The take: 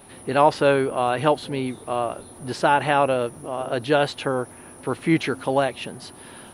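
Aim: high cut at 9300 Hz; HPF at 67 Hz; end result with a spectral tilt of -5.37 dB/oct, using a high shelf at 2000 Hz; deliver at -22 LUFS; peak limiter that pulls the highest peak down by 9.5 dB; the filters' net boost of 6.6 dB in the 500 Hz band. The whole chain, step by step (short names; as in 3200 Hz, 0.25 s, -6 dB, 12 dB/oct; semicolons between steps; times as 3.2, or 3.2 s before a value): HPF 67 Hz; LPF 9300 Hz; bell 500 Hz +8.5 dB; high shelf 2000 Hz -6 dB; limiter -10.5 dBFS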